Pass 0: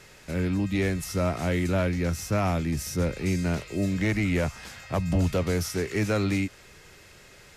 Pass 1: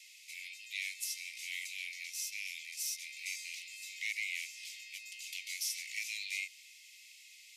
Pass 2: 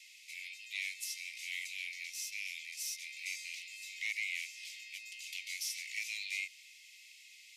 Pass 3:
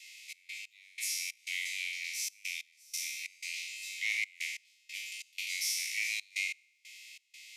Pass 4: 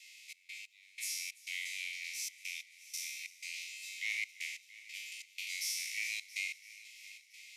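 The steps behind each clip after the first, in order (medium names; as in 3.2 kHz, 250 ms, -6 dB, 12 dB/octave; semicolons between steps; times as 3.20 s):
steep high-pass 2.1 kHz 96 dB/octave; trim -1.5 dB
treble shelf 5.1 kHz -6 dB; in parallel at -12 dB: sine folder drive 3 dB, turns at -26 dBFS; on the sum: trim -2 dB
spectral sustain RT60 1.27 s; trance gate "xx.x..xx.xxx" 92 bpm -24 dB; trim +2.5 dB
multi-head delay 338 ms, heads first and second, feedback 59%, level -21 dB; trim -4 dB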